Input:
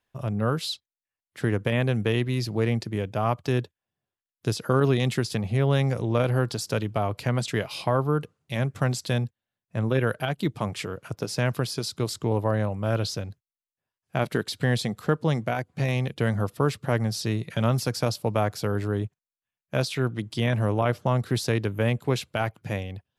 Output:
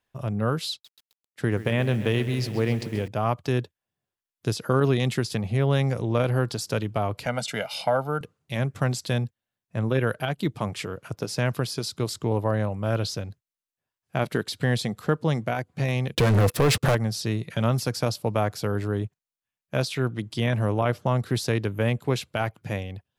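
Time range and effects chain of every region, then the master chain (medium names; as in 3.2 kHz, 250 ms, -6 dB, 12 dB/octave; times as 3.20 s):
0.71–3.08 s: expander -40 dBFS + bit-crushed delay 132 ms, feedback 80%, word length 7-bit, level -14 dB
7.26–8.21 s: high-pass 240 Hz + comb 1.4 ms, depth 73%
16.15–16.95 s: compression 4:1, threshold -26 dBFS + waveshaping leveller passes 5 + small resonant body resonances 490/2600 Hz, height 6 dB
whole clip: none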